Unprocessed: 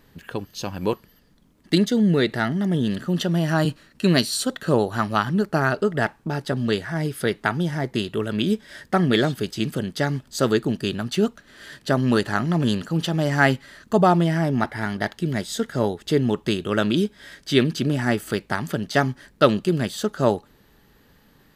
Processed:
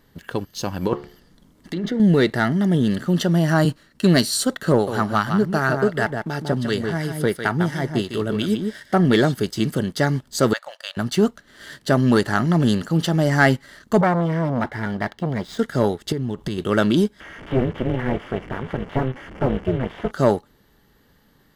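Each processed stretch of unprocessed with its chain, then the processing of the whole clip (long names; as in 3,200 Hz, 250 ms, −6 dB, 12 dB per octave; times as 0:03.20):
0:00.87–0:02.00: treble cut that deepens with the level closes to 2,000 Hz, closed at −19 dBFS + compressor whose output falls as the input rises −26 dBFS + hum removal 71.84 Hz, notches 32
0:04.72–0:09.05: single-tap delay 151 ms −7.5 dB + two-band tremolo in antiphase 2.8 Hz, depth 50%, crossover 1,200 Hz
0:10.53–0:10.97: linear-phase brick-wall high-pass 510 Hz + high-shelf EQ 6,100 Hz −11 dB
0:14.01–0:15.59: running median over 5 samples + high-shelf EQ 4,400 Hz −10 dB + saturating transformer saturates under 1,200 Hz
0:16.12–0:16.58: low-shelf EQ 180 Hz +11.5 dB + downward compressor 16 to 1, threshold −25 dBFS + one half of a high-frequency compander encoder only
0:17.20–0:20.11: linear delta modulator 16 kbit/s, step −30.5 dBFS + amplitude modulation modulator 260 Hz, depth 95%
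whole clip: dynamic equaliser 3,400 Hz, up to −4 dB, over −42 dBFS, Q 2.5; leveller curve on the samples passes 1; notch filter 2,500 Hz, Q 8.8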